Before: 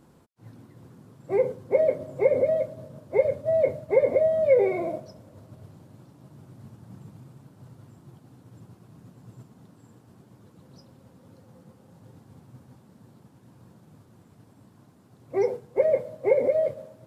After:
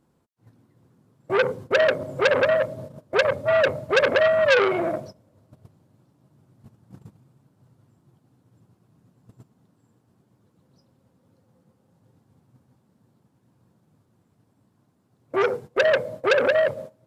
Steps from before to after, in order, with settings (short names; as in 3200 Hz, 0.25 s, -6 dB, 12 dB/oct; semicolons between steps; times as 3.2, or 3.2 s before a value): gate -42 dBFS, range -16 dB; core saturation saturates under 2300 Hz; gain +6 dB